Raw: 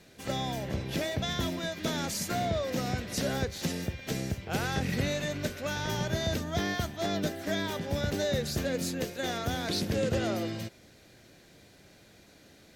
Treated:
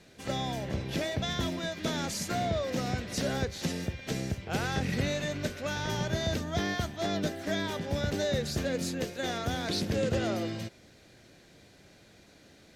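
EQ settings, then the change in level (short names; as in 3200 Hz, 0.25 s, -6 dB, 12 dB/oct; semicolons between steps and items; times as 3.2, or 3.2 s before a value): air absorption 58 m; high shelf 10000 Hz +12 dB; 0.0 dB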